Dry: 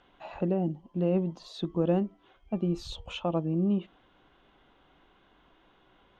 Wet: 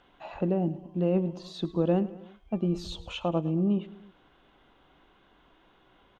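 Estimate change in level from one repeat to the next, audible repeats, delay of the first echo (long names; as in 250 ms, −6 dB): −4.5 dB, 3, 107 ms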